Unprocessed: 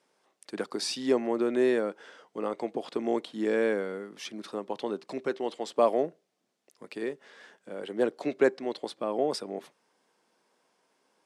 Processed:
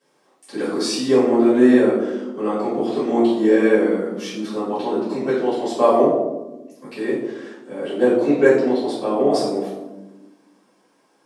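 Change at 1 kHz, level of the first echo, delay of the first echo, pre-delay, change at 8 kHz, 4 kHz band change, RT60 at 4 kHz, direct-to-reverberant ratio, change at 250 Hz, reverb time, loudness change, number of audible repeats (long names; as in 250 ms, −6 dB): +10.5 dB, no echo audible, no echo audible, 3 ms, can't be measured, +7.5 dB, 0.55 s, −14.0 dB, +14.5 dB, 1.1 s, +11.5 dB, no echo audible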